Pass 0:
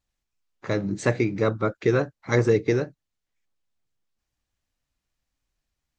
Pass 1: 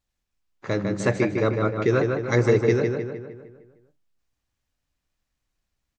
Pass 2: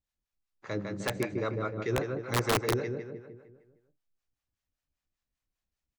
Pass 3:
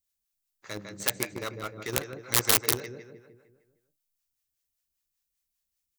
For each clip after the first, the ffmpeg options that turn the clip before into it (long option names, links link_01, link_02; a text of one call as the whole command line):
ffmpeg -i in.wav -filter_complex "[0:a]asplit=2[link_01][link_02];[link_02]adelay=153,lowpass=frequency=3600:poles=1,volume=-4dB,asplit=2[link_03][link_04];[link_04]adelay=153,lowpass=frequency=3600:poles=1,volume=0.53,asplit=2[link_05][link_06];[link_06]adelay=153,lowpass=frequency=3600:poles=1,volume=0.53,asplit=2[link_07][link_08];[link_08]adelay=153,lowpass=frequency=3600:poles=1,volume=0.53,asplit=2[link_09][link_10];[link_10]adelay=153,lowpass=frequency=3600:poles=1,volume=0.53,asplit=2[link_11][link_12];[link_12]adelay=153,lowpass=frequency=3600:poles=1,volume=0.53,asplit=2[link_13][link_14];[link_14]adelay=153,lowpass=frequency=3600:poles=1,volume=0.53[link_15];[link_01][link_03][link_05][link_07][link_09][link_11][link_13][link_15]amix=inputs=8:normalize=0" out.wav
ffmpeg -i in.wav -filter_complex "[0:a]acrossover=split=570[link_01][link_02];[link_01]aeval=exprs='val(0)*(1-0.7/2+0.7/2*cos(2*PI*5.1*n/s))':channel_layout=same[link_03];[link_02]aeval=exprs='val(0)*(1-0.7/2-0.7/2*cos(2*PI*5.1*n/s))':channel_layout=same[link_04];[link_03][link_04]amix=inputs=2:normalize=0,aeval=exprs='(mod(4.73*val(0)+1,2)-1)/4.73':channel_layout=same,volume=-6dB" out.wav
ffmpeg -i in.wav -filter_complex "[0:a]crystalizer=i=6.5:c=0,asplit=2[link_01][link_02];[link_02]acrusher=bits=3:mix=0:aa=0.000001,volume=-6dB[link_03];[link_01][link_03]amix=inputs=2:normalize=0,volume=-8dB" out.wav